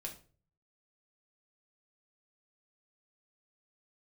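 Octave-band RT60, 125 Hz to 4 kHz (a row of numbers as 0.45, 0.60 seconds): 0.80, 0.50, 0.45, 0.35, 0.30, 0.30 seconds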